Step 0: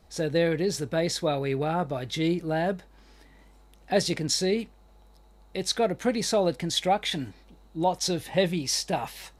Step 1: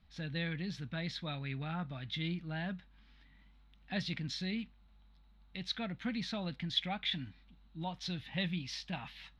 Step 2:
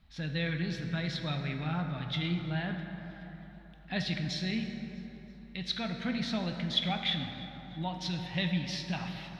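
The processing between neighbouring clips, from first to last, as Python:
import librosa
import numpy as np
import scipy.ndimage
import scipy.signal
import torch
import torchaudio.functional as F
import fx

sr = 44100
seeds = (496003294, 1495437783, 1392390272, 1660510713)

y1 = fx.curve_eq(x, sr, hz=(230.0, 410.0, 1400.0, 3500.0, 8000.0), db=(0, -19, -2, 3, -25))
y1 = y1 * librosa.db_to_amplitude(-7.0)
y2 = fx.echo_feedback(y1, sr, ms=325, feedback_pct=56, wet_db=-24.0)
y2 = fx.rev_plate(y2, sr, seeds[0], rt60_s=3.7, hf_ratio=0.45, predelay_ms=0, drr_db=4.0)
y2 = y2 * librosa.db_to_amplitude(3.5)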